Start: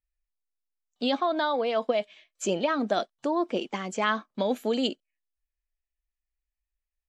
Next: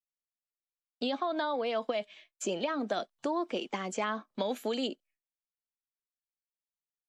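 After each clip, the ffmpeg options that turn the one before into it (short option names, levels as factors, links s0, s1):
-filter_complex "[0:a]agate=range=0.0224:threshold=0.002:ratio=3:detection=peak,acrossover=split=230|1000[s0][s1][s2];[s0]acompressor=threshold=0.00447:ratio=4[s3];[s1]acompressor=threshold=0.0251:ratio=4[s4];[s2]acompressor=threshold=0.0141:ratio=4[s5];[s3][s4][s5]amix=inputs=3:normalize=0"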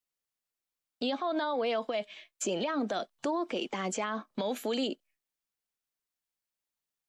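-af "alimiter=level_in=1.68:limit=0.0631:level=0:latency=1:release=73,volume=0.596,volume=1.78"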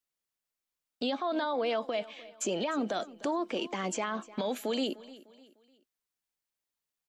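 -af "aecho=1:1:301|602|903:0.112|0.0438|0.0171"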